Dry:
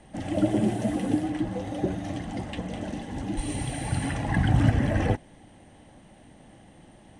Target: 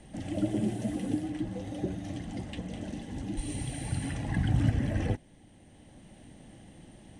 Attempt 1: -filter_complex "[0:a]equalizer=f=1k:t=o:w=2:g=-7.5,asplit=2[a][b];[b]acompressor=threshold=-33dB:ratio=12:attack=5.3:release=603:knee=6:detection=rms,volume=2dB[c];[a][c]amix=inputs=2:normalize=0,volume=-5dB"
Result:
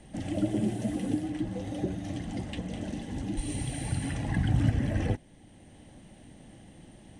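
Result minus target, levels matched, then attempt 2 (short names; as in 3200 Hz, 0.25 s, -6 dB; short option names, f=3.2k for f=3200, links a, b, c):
compressor: peak gain reduction -8.5 dB
-filter_complex "[0:a]equalizer=f=1k:t=o:w=2:g=-7.5,asplit=2[a][b];[b]acompressor=threshold=-42.5dB:ratio=12:attack=5.3:release=603:knee=6:detection=rms,volume=2dB[c];[a][c]amix=inputs=2:normalize=0,volume=-5dB"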